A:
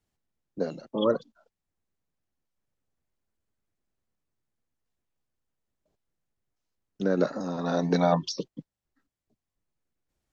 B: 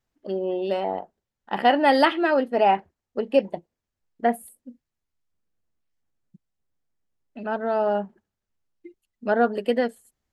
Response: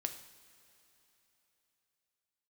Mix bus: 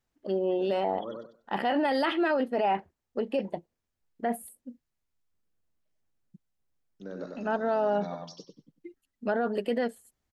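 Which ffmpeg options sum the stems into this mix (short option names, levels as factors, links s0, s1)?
-filter_complex "[0:a]volume=0.168,asplit=2[s0][s1];[s1]volume=0.631[s2];[1:a]volume=0.891,asplit=2[s3][s4];[s4]apad=whole_len=455214[s5];[s0][s5]sidechaincompress=threshold=0.0501:ratio=8:attack=16:release=216[s6];[s2]aecho=0:1:96|192|288:1|0.21|0.0441[s7];[s6][s3][s7]amix=inputs=3:normalize=0,alimiter=limit=0.112:level=0:latency=1:release=14"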